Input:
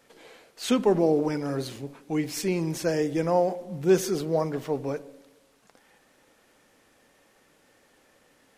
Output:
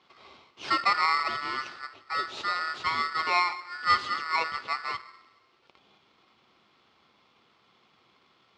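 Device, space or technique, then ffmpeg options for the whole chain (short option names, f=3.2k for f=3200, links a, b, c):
ring modulator pedal into a guitar cabinet: -af "aeval=exprs='val(0)*sgn(sin(2*PI*1600*n/s))':c=same,highpass=93,equalizer=f=170:t=q:w=4:g=-4,equalizer=f=370:t=q:w=4:g=7,equalizer=f=1.9k:t=q:w=4:g=-9,lowpass=f=4.3k:w=0.5412,lowpass=f=4.3k:w=1.3066"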